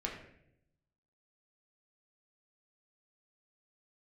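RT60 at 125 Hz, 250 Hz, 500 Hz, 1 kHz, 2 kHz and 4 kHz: 1.3, 1.0, 0.90, 0.60, 0.70, 0.55 seconds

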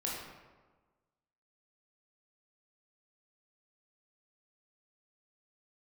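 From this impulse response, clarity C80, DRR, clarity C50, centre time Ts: 3.0 dB, −4.5 dB, 0.5 dB, 76 ms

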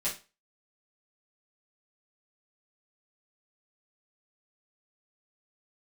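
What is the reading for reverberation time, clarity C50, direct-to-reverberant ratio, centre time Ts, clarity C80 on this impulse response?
0.30 s, 9.0 dB, −10.0 dB, 24 ms, 16.0 dB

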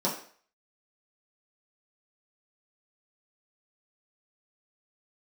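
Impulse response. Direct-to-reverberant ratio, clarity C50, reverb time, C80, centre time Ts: −7.0 dB, 7.0 dB, 0.50 s, 11.0 dB, 29 ms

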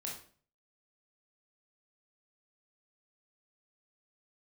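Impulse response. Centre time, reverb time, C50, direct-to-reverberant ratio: 34 ms, 0.45 s, 5.0 dB, −3.0 dB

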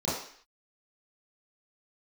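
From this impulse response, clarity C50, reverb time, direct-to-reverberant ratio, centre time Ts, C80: 1.5 dB, 0.55 s, −11.0 dB, 56 ms, 6.0 dB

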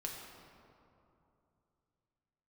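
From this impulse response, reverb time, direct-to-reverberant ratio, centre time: 2.8 s, −1.0 dB, 90 ms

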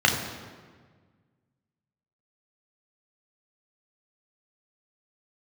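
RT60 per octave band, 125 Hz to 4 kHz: 2.2, 2.0, 1.7, 1.5, 1.4, 1.1 seconds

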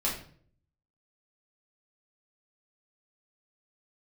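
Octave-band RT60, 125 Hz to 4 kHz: 0.90, 0.70, 0.60, 0.45, 0.45, 0.40 seconds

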